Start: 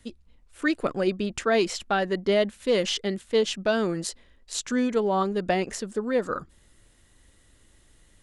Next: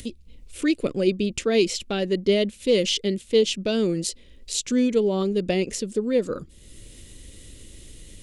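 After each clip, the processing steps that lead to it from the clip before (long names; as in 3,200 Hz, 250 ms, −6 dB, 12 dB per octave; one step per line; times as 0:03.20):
flat-topped bell 1,100 Hz −13.5 dB
in parallel at 0 dB: upward compression, threshold −28 dBFS
on the sum: level −2 dB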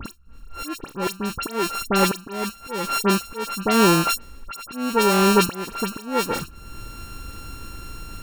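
samples sorted by size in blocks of 32 samples
volume swells 558 ms
all-pass dispersion highs, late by 59 ms, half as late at 2,800 Hz
level +8 dB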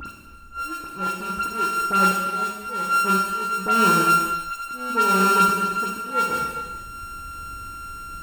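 upward compression, threshold −30 dBFS
hollow resonant body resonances 1,400/2,700 Hz, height 15 dB, ringing for 55 ms
convolution reverb, pre-delay 3 ms, DRR −0.5 dB
level −9 dB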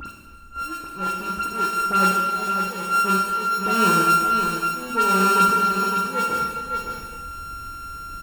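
single-tap delay 560 ms −7 dB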